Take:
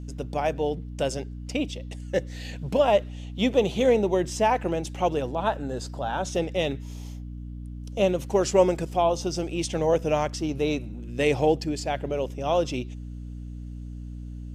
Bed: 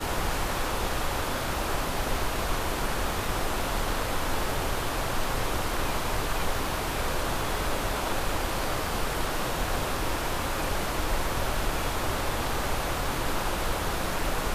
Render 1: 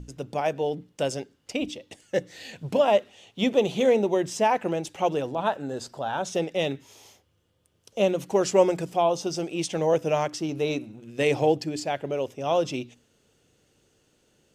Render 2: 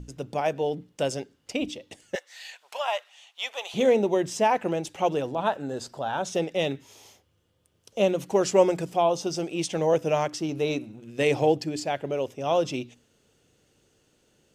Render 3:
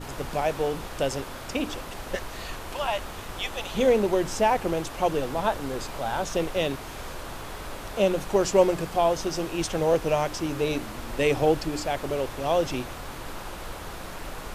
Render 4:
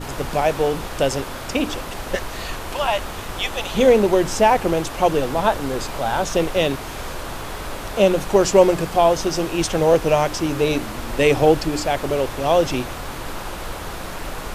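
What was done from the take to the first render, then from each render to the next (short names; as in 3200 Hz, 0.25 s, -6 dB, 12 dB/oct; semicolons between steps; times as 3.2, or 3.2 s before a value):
notches 60/120/180/240/300 Hz
2.15–3.74 HPF 830 Hz 24 dB/oct
add bed -8.5 dB
gain +7 dB; limiter -1 dBFS, peak gain reduction 1.5 dB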